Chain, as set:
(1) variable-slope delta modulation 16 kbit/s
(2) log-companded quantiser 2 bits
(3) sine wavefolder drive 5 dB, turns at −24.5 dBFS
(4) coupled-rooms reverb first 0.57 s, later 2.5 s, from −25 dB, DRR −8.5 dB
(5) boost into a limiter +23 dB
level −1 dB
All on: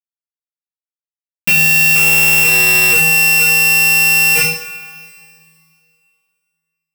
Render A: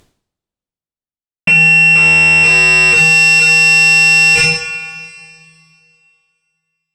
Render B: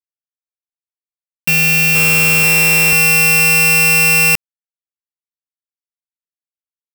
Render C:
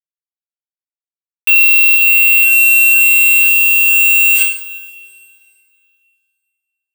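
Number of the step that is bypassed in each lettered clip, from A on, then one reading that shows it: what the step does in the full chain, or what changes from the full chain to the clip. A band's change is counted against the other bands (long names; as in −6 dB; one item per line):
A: 2, distortion level −8 dB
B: 4, 125 Hz band +5.5 dB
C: 1, change in crest factor −1.5 dB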